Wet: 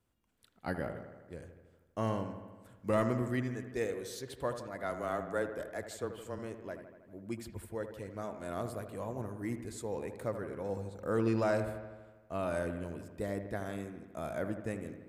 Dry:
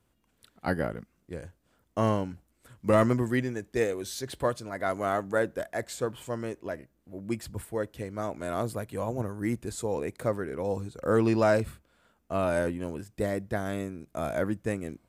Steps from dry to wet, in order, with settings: 4.83–6.39 s: frequency shift -18 Hz; feedback echo behind a low-pass 80 ms, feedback 66%, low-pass 2.4 kHz, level -9.5 dB; trim -8 dB

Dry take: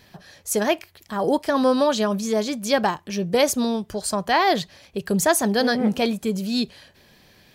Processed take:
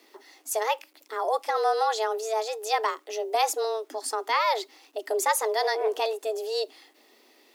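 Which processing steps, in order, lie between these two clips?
bit crusher 10-bit; frequency shift +220 Hz; trim -5.5 dB

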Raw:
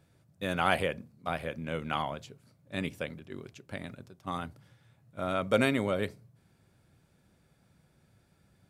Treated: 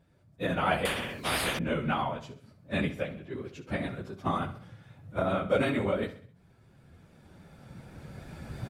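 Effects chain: phase randomisation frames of 50 ms; recorder AGC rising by 9.8 dB/s; vibrato 2.7 Hz 19 cents; treble shelf 3.9 kHz -10 dB; feedback delay 65 ms, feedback 45%, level -13 dB; 0.85–1.59 s: spectrum-flattening compressor 4:1

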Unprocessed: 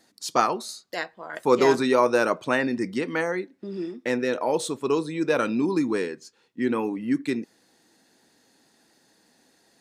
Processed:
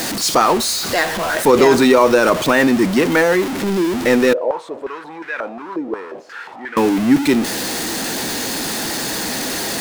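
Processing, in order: jump at every zero crossing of -26.5 dBFS; loudness maximiser +10.5 dB; 4.33–6.77 s: step-sequenced band-pass 5.6 Hz 490–1800 Hz; trim -1 dB

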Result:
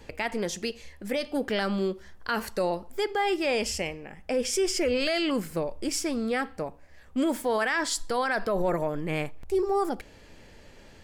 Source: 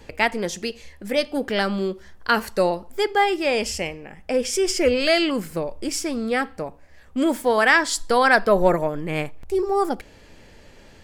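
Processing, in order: peak limiter -15 dBFS, peak gain reduction 11 dB; trim -3 dB

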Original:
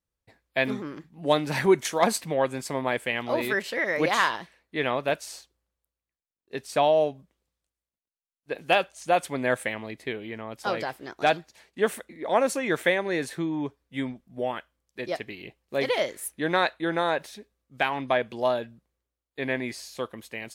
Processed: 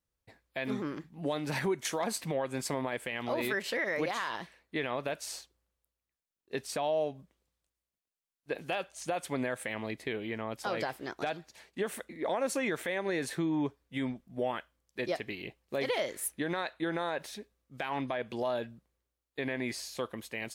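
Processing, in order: compression 6:1, threshold -26 dBFS, peak gain reduction 11.5 dB; peak limiter -22.5 dBFS, peak gain reduction 10 dB

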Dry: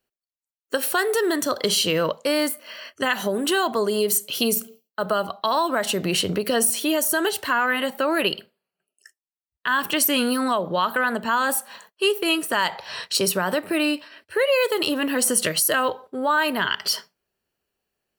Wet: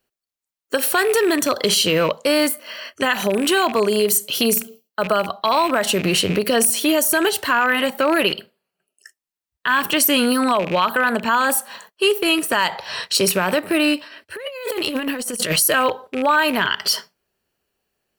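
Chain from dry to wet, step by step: rattle on loud lows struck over -38 dBFS, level -23 dBFS; in parallel at -2 dB: peak limiter -14.5 dBFS, peak gain reduction 7 dB; 14.36–15.56 s: on the sum: compressor with a negative ratio -23 dBFS, ratio -0.5

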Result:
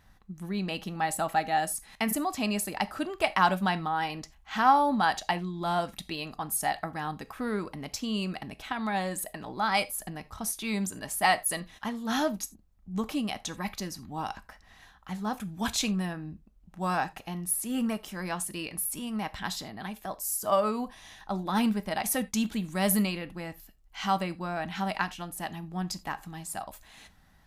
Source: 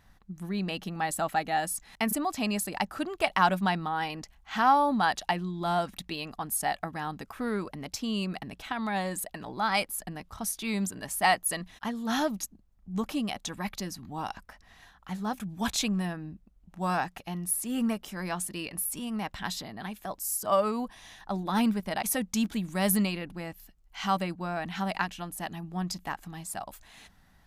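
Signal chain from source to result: gated-style reverb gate 110 ms falling, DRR 12 dB

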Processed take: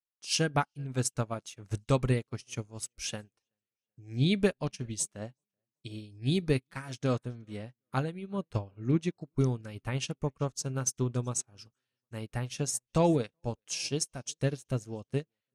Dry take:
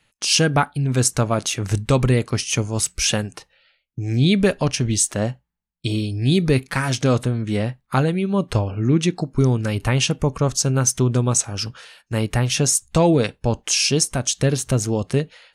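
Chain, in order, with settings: tape echo 379 ms, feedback 57%, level -23 dB, low-pass 5.1 kHz; upward expansion 2.5:1, over -38 dBFS; trim -7 dB

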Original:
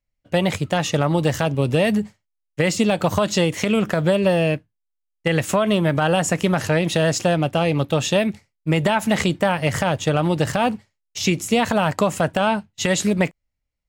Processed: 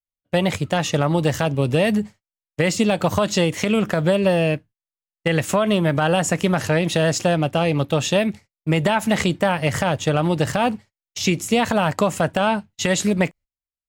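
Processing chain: gate -41 dBFS, range -21 dB

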